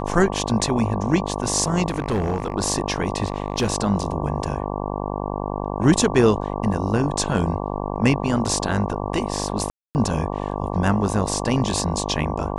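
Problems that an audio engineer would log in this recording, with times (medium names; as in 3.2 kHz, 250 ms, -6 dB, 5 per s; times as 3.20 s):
buzz 50 Hz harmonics 23 -27 dBFS
1.88–2.54 s: clipped -17.5 dBFS
3.24–3.70 s: clipped -15.5 dBFS
9.70–9.95 s: dropout 249 ms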